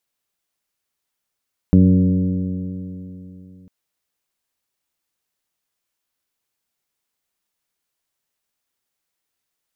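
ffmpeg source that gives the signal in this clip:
-f lavfi -i "aevalsrc='0.224*pow(10,-3*t/3.23)*sin(2*PI*91.3*t)+0.355*pow(10,-3*t/3.23)*sin(2*PI*183.2*t)+0.178*pow(10,-3*t/3.23)*sin(2*PI*276.3*t)+0.0473*pow(10,-3*t/3.23)*sin(2*PI*371.16*t)+0.0447*pow(10,-3*t/3.23)*sin(2*PI*468.37*t)+0.0224*pow(10,-3*t/3.23)*sin(2*PI*568.46*t)':d=1.95:s=44100"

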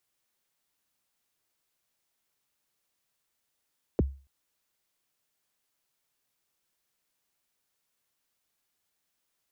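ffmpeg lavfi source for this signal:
-f lavfi -i "aevalsrc='0.133*pow(10,-3*t/0.35)*sin(2*PI*(540*0.024/log(68/540)*(exp(log(68/540)*min(t,0.024)/0.024)-1)+68*max(t-0.024,0)))':d=0.28:s=44100"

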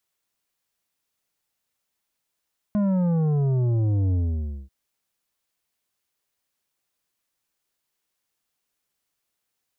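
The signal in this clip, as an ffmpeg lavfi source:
-f lavfi -i "aevalsrc='0.1*clip((1.94-t)/0.56,0,1)*tanh(2.82*sin(2*PI*210*1.94/log(65/210)*(exp(log(65/210)*t/1.94)-1)))/tanh(2.82)':d=1.94:s=44100"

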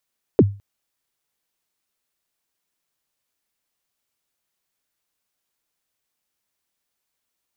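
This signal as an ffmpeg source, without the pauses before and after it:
-f lavfi -i "aevalsrc='0.562*pow(10,-3*t/0.32)*sin(2*PI*(500*0.043/log(100/500)*(exp(log(100/500)*min(t,0.043)/0.043)-1)+100*max(t-0.043,0)))':d=0.21:s=44100"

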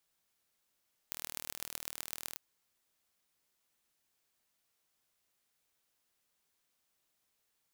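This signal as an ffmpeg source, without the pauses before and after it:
-f lavfi -i "aevalsrc='0.335*eq(mod(n,1116),0)*(0.5+0.5*eq(mod(n,5580),0))':d=1.26:s=44100"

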